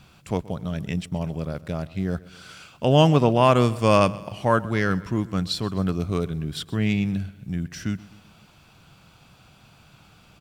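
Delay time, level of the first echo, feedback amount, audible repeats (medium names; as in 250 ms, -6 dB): 127 ms, -20.0 dB, 53%, 3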